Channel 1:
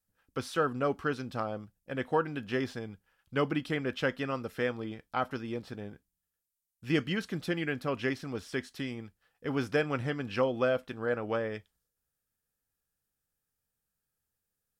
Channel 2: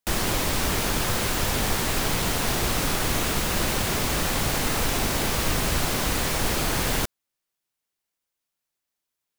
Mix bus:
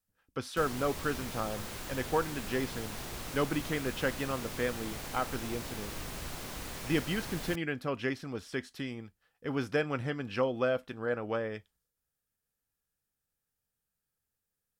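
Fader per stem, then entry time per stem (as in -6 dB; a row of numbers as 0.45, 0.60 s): -1.5, -16.5 dB; 0.00, 0.50 s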